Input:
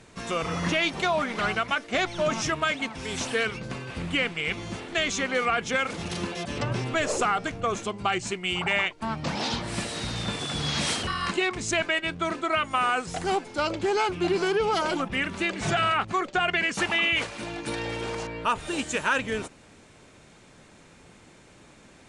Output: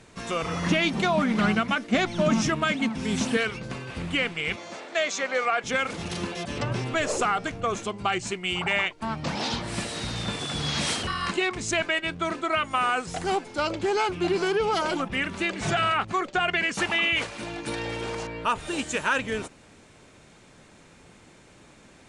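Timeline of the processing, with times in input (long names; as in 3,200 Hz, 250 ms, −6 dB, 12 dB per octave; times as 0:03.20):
0:00.70–0:03.37: parametric band 210 Hz +14.5 dB
0:04.56–0:05.64: loudspeaker in its box 380–8,100 Hz, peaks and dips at 390 Hz −5 dB, 600 Hz +7 dB, 3,000 Hz −5 dB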